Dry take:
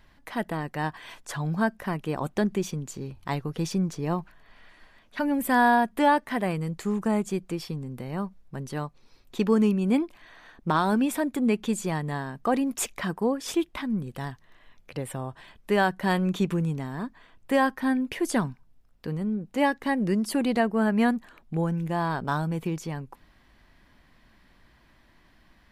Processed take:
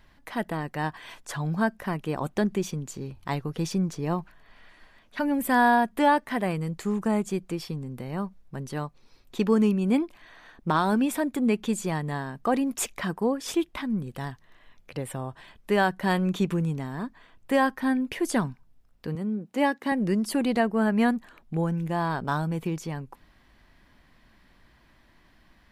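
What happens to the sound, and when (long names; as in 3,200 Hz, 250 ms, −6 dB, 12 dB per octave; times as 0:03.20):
0:19.15–0:19.92: Chebyshev high-pass filter 210 Hz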